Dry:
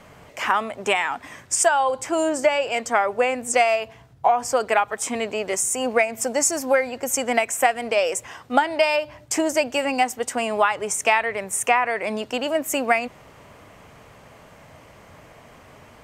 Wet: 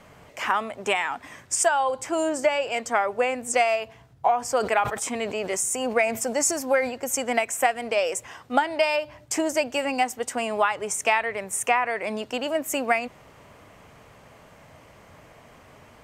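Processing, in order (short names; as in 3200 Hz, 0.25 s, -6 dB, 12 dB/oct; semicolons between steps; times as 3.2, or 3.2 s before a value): 4.39–6.93 sustainer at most 89 dB/s; gain -3 dB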